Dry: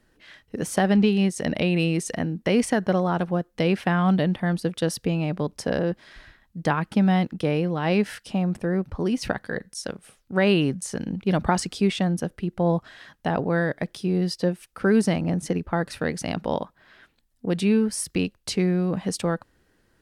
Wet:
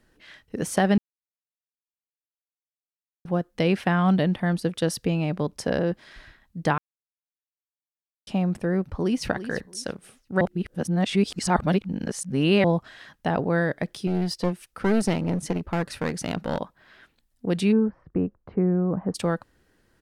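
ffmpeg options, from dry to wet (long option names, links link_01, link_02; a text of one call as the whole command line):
ffmpeg -i in.wav -filter_complex "[0:a]asplit=2[link_01][link_02];[link_02]afade=type=in:start_time=8.85:duration=0.01,afade=type=out:start_time=9.26:duration=0.01,aecho=0:1:340|680|1020:0.251189|0.0502377|0.0100475[link_03];[link_01][link_03]amix=inputs=2:normalize=0,asettb=1/sr,asplit=3[link_04][link_05][link_06];[link_04]atrim=end=14.074[link_07];[link_05]atrim=start=14.07:end=16.59,asetpts=PTS-STARTPTS,afade=type=in:duration=0.004:curve=qsin,afade=type=out:start_time=2.516:duration=0.004:curve=qsin,aeval=exprs='clip(val(0),-1,0.0531)':channel_layout=same[link_08];[link_06]atrim=start=16.586[link_09];[link_07][link_08]acrossfade=duration=0.004:curve1=hsin:curve2=qsin[link_10];[link_10][link_09]acrossfade=duration=0.004:curve1=qsin:curve2=hsin,asplit=3[link_11][link_12][link_13];[link_11]afade=type=out:start_time=17.71:duration=0.02[link_14];[link_12]lowpass=frequency=1300:width=0.5412,lowpass=frequency=1300:width=1.3066,afade=type=in:start_time=17.71:duration=0.02,afade=type=out:start_time=19.14:duration=0.02[link_15];[link_13]afade=type=in:start_time=19.14:duration=0.02[link_16];[link_14][link_15][link_16]amix=inputs=3:normalize=0,asplit=7[link_17][link_18][link_19][link_20][link_21][link_22][link_23];[link_17]atrim=end=0.98,asetpts=PTS-STARTPTS,afade=type=out:start_time=0.976:duration=0.004:curve=hsin[link_24];[link_18]atrim=start=0.98:end=3.25,asetpts=PTS-STARTPTS,volume=0[link_25];[link_19]atrim=start=3.25:end=6.78,asetpts=PTS-STARTPTS,afade=type=in:duration=0.004:curve=hsin,afade=type=out:start_time=3.526:duration=0.004:curve=hsin[link_26];[link_20]atrim=start=6.78:end=8.27,asetpts=PTS-STARTPTS,volume=0[link_27];[link_21]atrim=start=8.27:end=10.412,asetpts=PTS-STARTPTS,afade=type=in:duration=0.004:curve=hsin[link_28];[link_22]atrim=start=10.408:end=12.642,asetpts=PTS-STARTPTS,areverse[link_29];[link_23]atrim=start=12.638[link_30];[link_24][link_25][link_26][link_27][link_28]concat=n=5:v=0:a=1[link_31];[link_31][link_29]acrossfade=duration=0.004:curve1=hsin:curve2=hsin[link_32];[link_32][link_30]acrossfade=duration=0.004:curve1=hsin:curve2=hsin" out.wav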